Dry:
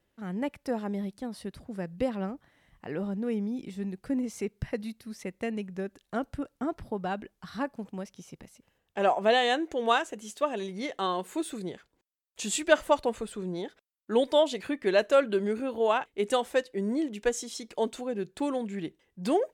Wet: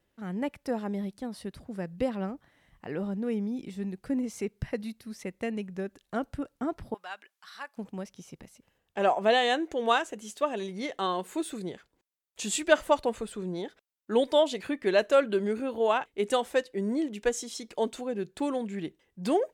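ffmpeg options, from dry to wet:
-filter_complex "[0:a]asettb=1/sr,asplit=3[a][b][c];[a]atrim=end=6.944[d];[b]atrim=start=6.94:end=7.77,asetpts=PTS-STARTPTS,afade=t=in:d=0.004:c=qsin,afade=t=out:st=0.826:d=0.004:c=qsin,highpass=1.3k[e];[c]atrim=start=7.766[f];[d][e]acrossfade=d=0.004:c1=hsin:c2=qsin[g];[g][f]acrossfade=d=0.004:c1=qsin:c2=hsin"

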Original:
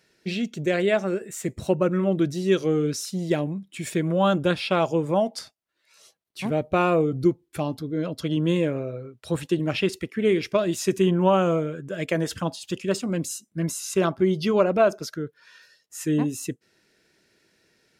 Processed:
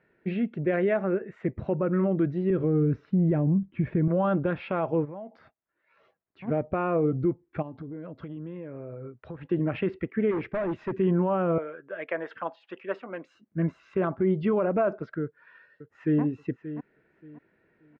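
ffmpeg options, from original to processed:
-filter_complex "[0:a]asettb=1/sr,asplit=3[a][b][c];[a]atrim=end=2.504[d];[b]atrim=start=2.5:end=4.08,asetpts=PTS-STARTPTS,afade=t=in:d=0.004:c=qsin,afade=t=out:st=1.576:d=0.004:c=qsin,aemphasis=mode=reproduction:type=riaa[e];[c]atrim=start=4.076[f];[d][e]acrossfade=d=0.004:c1=hsin:c2=qsin[g];[g][f]acrossfade=d=0.004:c1=qsin:c2=hsin,asplit=3[h][i][j];[h]afade=t=out:st=5.04:d=0.02[k];[i]acompressor=threshold=-39dB:ratio=4:attack=3.2:release=140:knee=1:detection=peak,afade=t=in:st=5.04:d=0.02,afade=t=out:st=6.47:d=0.02[l];[j]afade=t=in:st=6.47:d=0.02[m];[k][l][m]amix=inputs=3:normalize=0,asplit=3[n][o][p];[n]afade=t=out:st=7.61:d=0.02[q];[o]acompressor=threshold=-34dB:ratio=12:attack=3.2:release=140:knee=1:detection=peak,afade=t=in:st=7.61:d=0.02,afade=t=out:st=9.48:d=0.02[r];[p]afade=t=in:st=9.48:d=0.02[s];[q][r][s]amix=inputs=3:normalize=0,asplit=3[t][u][v];[t]afade=t=out:st=10.3:d=0.02[w];[u]volume=26dB,asoftclip=hard,volume=-26dB,afade=t=in:st=10.3:d=0.02,afade=t=out:st=10.95:d=0.02[x];[v]afade=t=in:st=10.95:d=0.02[y];[w][x][y]amix=inputs=3:normalize=0,asettb=1/sr,asplit=3[z][aa][ab];[z]atrim=end=11.584[ac];[aa]atrim=start=11.58:end=13.35,asetpts=PTS-STARTPTS,afade=t=in:d=0.004:c=qsin,afade=t=out:st=1.766:d=0.004:c=qsin,highpass=620[ad];[ab]atrim=start=13.346[ae];[ac][ad]acrossfade=d=0.004:c1=hsin:c2=qsin[af];[af][ae]acrossfade=d=0.004:c1=qsin:c2=hsin,asplit=2[ag][ah];[ah]afade=t=in:st=15.22:d=0.01,afade=t=out:st=16.22:d=0.01,aecho=0:1:580|1160|1740:0.223872|0.055968|0.013992[ai];[ag][ai]amix=inputs=2:normalize=0,lowpass=f=2k:w=0.5412,lowpass=f=2k:w=1.3066,alimiter=limit=-16.5dB:level=0:latency=1:release=44"

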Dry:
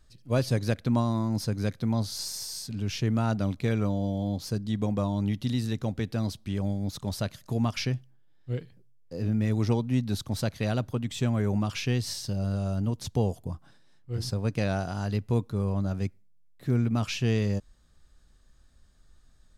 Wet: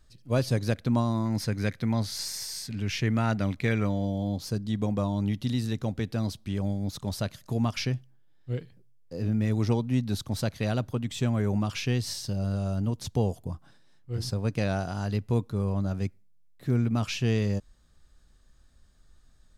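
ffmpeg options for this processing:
-filter_complex "[0:a]asettb=1/sr,asplit=3[a][b][c];[a]atrim=end=1.254[d];[b]atrim=start=1.25:end=4.05,asetpts=PTS-STARTPTS,afade=t=in:d=0.004:c=qsin,afade=t=out:st=2.796:d=0.004:c=qsin,equalizer=f=2k:t=o:w=0.8:g=9.5[e];[c]atrim=start=4.046[f];[d][e]acrossfade=d=0.004:c1=hsin:c2=qsin[g];[g][f]acrossfade=d=0.004:c1=qsin:c2=hsin"

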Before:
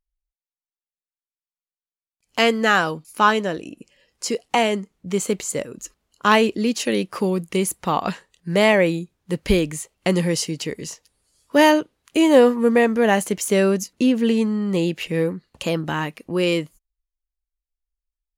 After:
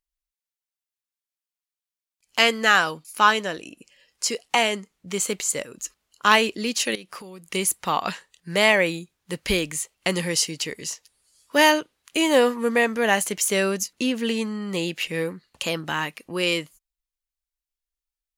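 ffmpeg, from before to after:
-filter_complex "[0:a]asettb=1/sr,asplit=3[a][b][c];[a]atrim=end=6.954[d];[b]atrim=start=6.95:end=7.46,asetpts=PTS-STARTPTS,afade=t=in:d=0.004:c=qsin,afade=t=out:st=0.506:d=0.004:c=qsin,acompressor=threshold=-34dB:ratio=4:attack=3.2:release=140:knee=1:detection=peak[e];[c]atrim=start=7.456[f];[d][e]acrossfade=d=0.004:c1=hsin:c2=qsin[g];[g][f]acrossfade=d=0.004:c1=qsin:c2=hsin,tiltshelf=f=820:g=-6,volume=-2.5dB"

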